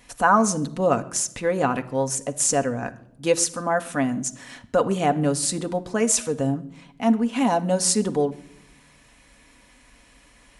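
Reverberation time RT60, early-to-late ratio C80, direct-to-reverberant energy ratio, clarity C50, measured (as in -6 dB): not exponential, 20.5 dB, 6.5 dB, 18.0 dB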